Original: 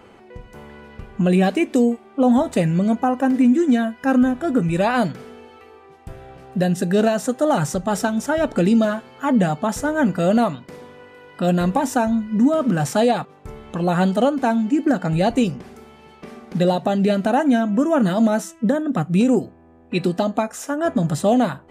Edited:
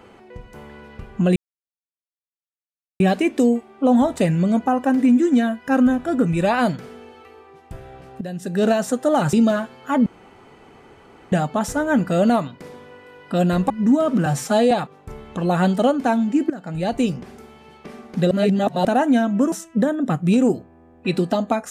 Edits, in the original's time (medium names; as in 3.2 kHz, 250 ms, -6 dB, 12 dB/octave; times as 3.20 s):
1.36 s: insert silence 1.64 s
6.57–7.03 s: fade in quadratic, from -12.5 dB
7.69–8.67 s: delete
9.40 s: insert room tone 1.26 s
11.78–12.23 s: delete
12.79–13.09 s: stretch 1.5×
14.88–15.56 s: fade in, from -17.5 dB
16.69–17.23 s: reverse
17.90–18.39 s: delete